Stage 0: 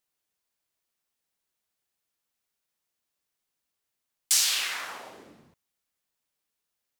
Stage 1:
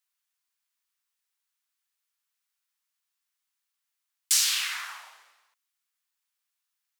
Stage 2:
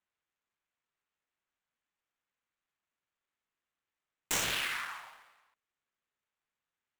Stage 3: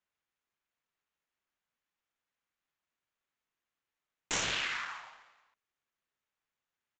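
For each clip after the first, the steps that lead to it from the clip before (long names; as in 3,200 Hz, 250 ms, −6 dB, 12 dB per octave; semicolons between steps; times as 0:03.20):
high-pass filter 1,000 Hz 24 dB per octave
running median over 9 samples
downsampling to 16,000 Hz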